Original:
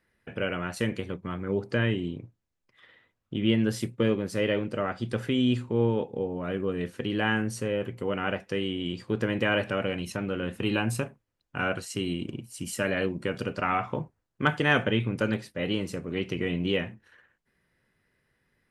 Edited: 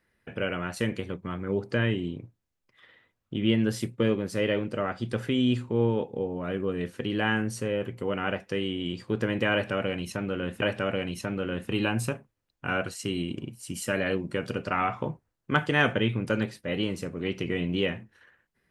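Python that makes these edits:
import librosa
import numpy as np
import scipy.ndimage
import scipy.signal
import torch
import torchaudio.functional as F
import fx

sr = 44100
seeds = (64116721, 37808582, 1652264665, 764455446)

y = fx.edit(x, sr, fx.repeat(start_s=9.53, length_s=1.09, count=2), tone=tone)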